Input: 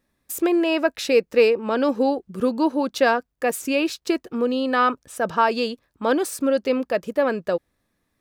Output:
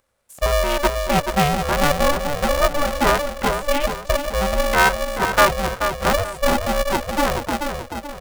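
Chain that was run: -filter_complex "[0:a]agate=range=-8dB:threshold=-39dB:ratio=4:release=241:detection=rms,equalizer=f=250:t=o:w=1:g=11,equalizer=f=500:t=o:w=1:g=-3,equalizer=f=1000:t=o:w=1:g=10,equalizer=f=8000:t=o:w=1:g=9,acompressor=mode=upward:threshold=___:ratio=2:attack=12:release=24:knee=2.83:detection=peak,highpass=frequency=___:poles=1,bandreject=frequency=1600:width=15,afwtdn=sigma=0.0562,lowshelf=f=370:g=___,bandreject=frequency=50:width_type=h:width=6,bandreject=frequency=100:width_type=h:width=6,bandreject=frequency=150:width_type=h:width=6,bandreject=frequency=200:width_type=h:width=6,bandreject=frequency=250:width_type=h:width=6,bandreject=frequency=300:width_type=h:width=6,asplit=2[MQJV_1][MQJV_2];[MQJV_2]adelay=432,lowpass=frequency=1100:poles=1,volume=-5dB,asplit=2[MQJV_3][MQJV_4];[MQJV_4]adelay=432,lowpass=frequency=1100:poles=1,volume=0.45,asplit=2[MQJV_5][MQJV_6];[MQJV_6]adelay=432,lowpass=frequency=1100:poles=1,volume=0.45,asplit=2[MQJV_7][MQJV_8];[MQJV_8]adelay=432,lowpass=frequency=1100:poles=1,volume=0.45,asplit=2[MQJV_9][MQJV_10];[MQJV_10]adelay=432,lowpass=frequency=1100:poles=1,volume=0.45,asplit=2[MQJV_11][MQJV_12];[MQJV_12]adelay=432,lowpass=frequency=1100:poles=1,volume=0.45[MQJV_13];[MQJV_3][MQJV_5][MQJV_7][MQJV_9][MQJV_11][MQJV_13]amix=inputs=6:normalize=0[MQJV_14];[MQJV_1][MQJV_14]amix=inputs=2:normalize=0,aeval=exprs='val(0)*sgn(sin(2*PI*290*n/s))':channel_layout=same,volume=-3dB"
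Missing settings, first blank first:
-25dB, 55, -2.5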